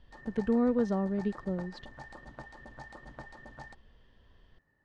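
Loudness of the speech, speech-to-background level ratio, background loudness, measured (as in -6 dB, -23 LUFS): -31.0 LUFS, 18.0 dB, -49.0 LUFS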